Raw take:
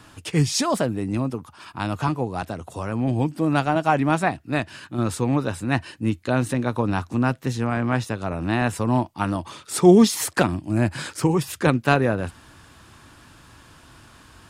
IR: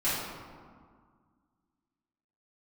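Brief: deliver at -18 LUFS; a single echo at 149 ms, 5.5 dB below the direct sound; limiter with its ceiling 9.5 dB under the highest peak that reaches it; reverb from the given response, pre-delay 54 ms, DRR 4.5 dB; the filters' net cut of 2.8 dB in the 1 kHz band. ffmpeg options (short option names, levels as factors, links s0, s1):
-filter_complex "[0:a]equalizer=f=1000:t=o:g=-4,alimiter=limit=0.251:level=0:latency=1,aecho=1:1:149:0.531,asplit=2[s0][s1];[1:a]atrim=start_sample=2205,adelay=54[s2];[s1][s2]afir=irnorm=-1:irlink=0,volume=0.178[s3];[s0][s3]amix=inputs=2:normalize=0,volume=1.68"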